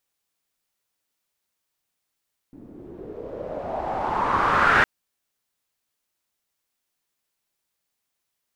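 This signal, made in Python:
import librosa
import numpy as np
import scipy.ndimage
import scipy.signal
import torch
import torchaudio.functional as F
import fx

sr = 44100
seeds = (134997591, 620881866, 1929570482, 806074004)

y = fx.riser_noise(sr, seeds[0], length_s=2.31, colour='white', kind='lowpass', start_hz=270.0, end_hz=1600.0, q=4.1, swell_db=21.0, law='exponential')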